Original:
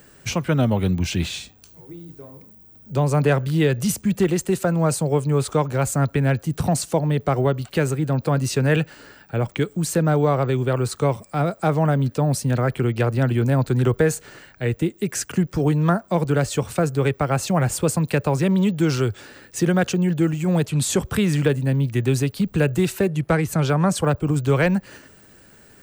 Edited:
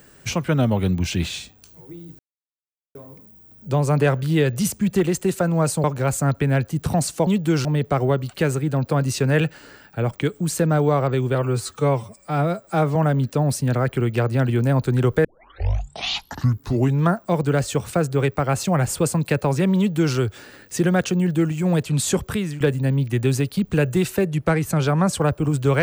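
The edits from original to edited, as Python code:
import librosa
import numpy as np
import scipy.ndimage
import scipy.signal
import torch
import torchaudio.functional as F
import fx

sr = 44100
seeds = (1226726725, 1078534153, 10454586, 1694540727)

y = fx.edit(x, sr, fx.insert_silence(at_s=2.19, length_s=0.76),
    fx.cut(start_s=5.08, length_s=0.5),
    fx.stretch_span(start_s=10.71, length_s=1.07, factor=1.5),
    fx.tape_start(start_s=14.07, length_s=1.83),
    fx.duplicate(start_s=18.6, length_s=0.38, to_s=7.01),
    fx.fade_out_to(start_s=21.01, length_s=0.42, floor_db=-14.0), tone=tone)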